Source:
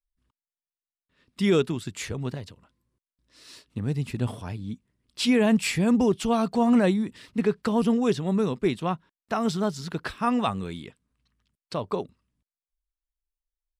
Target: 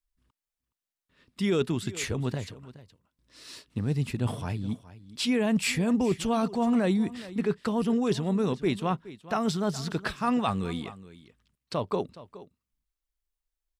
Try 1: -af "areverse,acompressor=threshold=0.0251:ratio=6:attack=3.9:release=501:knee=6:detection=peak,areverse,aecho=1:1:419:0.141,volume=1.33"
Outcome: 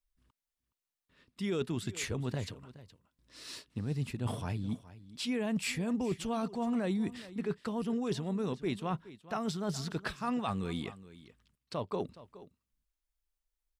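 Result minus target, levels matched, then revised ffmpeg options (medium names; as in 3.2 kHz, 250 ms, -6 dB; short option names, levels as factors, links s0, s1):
compression: peak gain reduction +8 dB
-af "areverse,acompressor=threshold=0.075:ratio=6:attack=3.9:release=501:knee=6:detection=peak,areverse,aecho=1:1:419:0.141,volume=1.33"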